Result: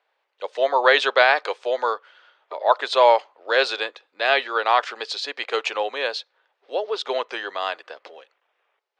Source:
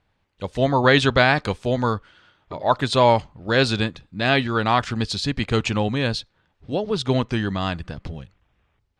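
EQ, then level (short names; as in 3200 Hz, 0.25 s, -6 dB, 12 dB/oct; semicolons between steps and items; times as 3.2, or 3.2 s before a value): steep high-pass 440 Hz 36 dB/oct; air absorption 98 m; +2.0 dB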